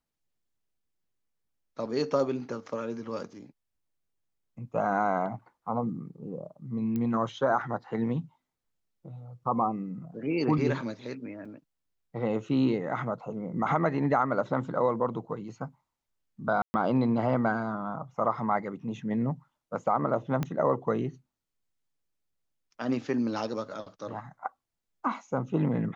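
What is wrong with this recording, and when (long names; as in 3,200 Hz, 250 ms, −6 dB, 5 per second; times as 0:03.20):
0:06.96: click −21 dBFS
0:11.45: drop-out 4.4 ms
0:16.62–0:16.74: drop-out 120 ms
0:20.43: click −17 dBFS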